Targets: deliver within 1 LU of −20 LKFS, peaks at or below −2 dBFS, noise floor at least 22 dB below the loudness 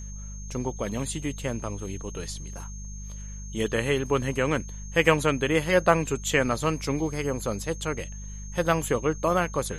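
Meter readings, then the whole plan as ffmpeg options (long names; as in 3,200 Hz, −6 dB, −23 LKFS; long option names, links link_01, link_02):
mains hum 50 Hz; hum harmonics up to 200 Hz; level of the hum −36 dBFS; interfering tone 6,400 Hz; level of the tone −44 dBFS; integrated loudness −26.5 LKFS; sample peak −4.5 dBFS; target loudness −20.0 LKFS
→ -af "bandreject=frequency=50:width_type=h:width=4,bandreject=frequency=100:width_type=h:width=4,bandreject=frequency=150:width_type=h:width=4,bandreject=frequency=200:width_type=h:width=4"
-af "bandreject=frequency=6400:width=30"
-af "volume=6.5dB,alimiter=limit=-2dB:level=0:latency=1"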